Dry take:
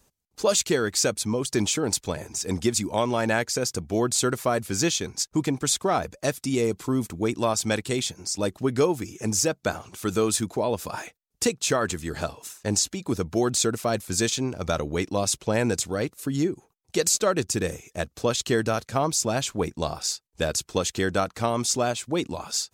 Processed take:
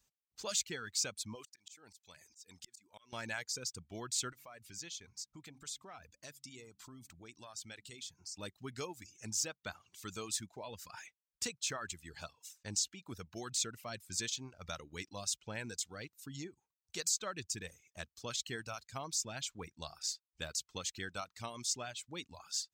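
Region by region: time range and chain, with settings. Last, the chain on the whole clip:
1.35–3.13 tilt +2 dB/oct + auto swell 0.622 s
4.32–8.37 de-hum 67.95 Hz, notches 4 + compressor 2:1, threshold -36 dBFS
whole clip: passive tone stack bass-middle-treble 5-5-5; reverb removal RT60 1.1 s; bell 11000 Hz -15 dB 0.42 oct; gain -2 dB

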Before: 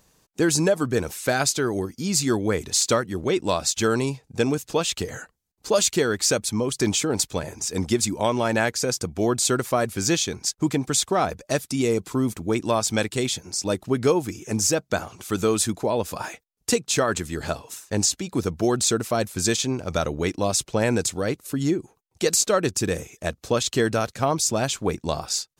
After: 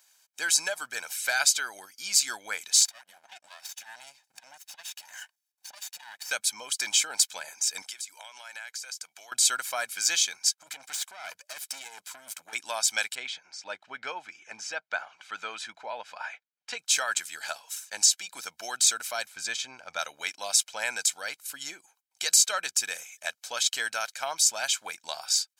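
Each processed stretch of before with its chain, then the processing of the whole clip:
2.85–6.31 minimum comb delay 1.1 ms + compressor 8:1, threshold -35 dBFS + core saturation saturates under 200 Hz
7.82–9.32 HPF 1100 Hz 6 dB/oct + compressor 10:1, threshold -34 dBFS
10.61–12.53 negative-ratio compressor -24 dBFS, ratio -0.5 + tube stage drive 28 dB, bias 0.8
13.15–16.79 de-esser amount 30% + LPF 2500 Hz
19.26–19.99 LPF 1900 Hz 6 dB/oct + low shelf 150 Hz +9 dB
whole clip: HPF 1500 Hz 12 dB/oct; comb 1.3 ms, depth 57%

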